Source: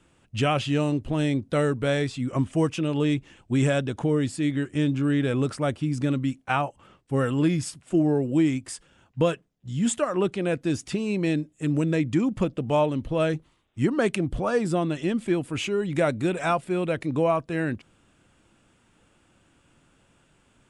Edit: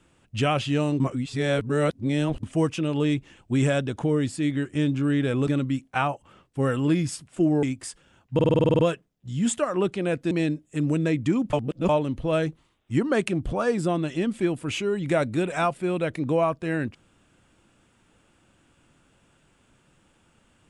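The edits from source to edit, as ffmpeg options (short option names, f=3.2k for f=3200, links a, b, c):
-filter_complex "[0:a]asplit=17[a][b][c][d][e][f][g][h][i][j][k][l][m][n][o][p][q];[a]atrim=end=1.002[r];[b]atrim=start=0.998:end=2.432,asetpts=PTS-STARTPTS,areverse[s];[c]atrim=start=2.428:end=5.472[t];[d]atrim=start=6.008:end=8.172[u];[e]atrim=start=8.478:end=9.242[v];[f]atrim=start=9.188:end=9.242[w];[g]atrim=start=9.188:end=9.242[x];[h]atrim=start=9.188:end=9.242[y];[i]atrim=start=9.188:end=9.242[z];[j]atrim=start=9.188:end=9.242[aa];[k]atrim=start=9.188:end=9.242[ab];[l]atrim=start=9.188:end=9.242[ac];[m]atrim=start=9.188:end=9.242[ad];[n]atrim=start=9.188:end=10.712[ae];[o]atrim=start=11.178:end=12.402[af];[p]atrim=start=12.398:end=12.762,asetpts=PTS-STARTPTS,areverse[ag];[q]atrim=start=12.758[ah];[r][s]acrossfade=d=0.004:c1=hsin:c2=hsin[ai];[ai][t]acrossfade=d=0.004:c1=hsin:c2=hsin[aj];[aj][u]acrossfade=d=0.004:c1=hsin:c2=hsin[ak];[ak][v]acrossfade=d=0.004:c1=hsin:c2=hsin[al];[al][w]acrossfade=d=0.004:c1=hsin:c2=hsin[am];[am][x]acrossfade=d=0.004:c1=hsin:c2=hsin[an];[an][y]acrossfade=d=0.004:c1=hsin:c2=hsin[ao];[ao][z]acrossfade=d=0.004:c1=hsin:c2=hsin[ap];[ap][aa]acrossfade=d=0.004:c1=hsin:c2=hsin[aq];[aq][ab]acrossfade=d=0.004:c1=hsin:c2=hsin[ar];[ar][ac]acrossfade=d=0.004:c1=hsin:c2=hsin[as];[as][ad]acrossfade=d=0.004:c1=hsin:c2=hsin[at];[at][ae]acrossfade=d=0.004:c1=hsin:c2=hsin[au];[au][af]acrossfade=d=0.004:c1=hsin:c2=hsin[av];[av][ag]acrossfade=d=0.004:c1=hsin:c2=hsin[aw];[aw][ah]acrossfade=d=0.004:c1=hsin:c2=hsin"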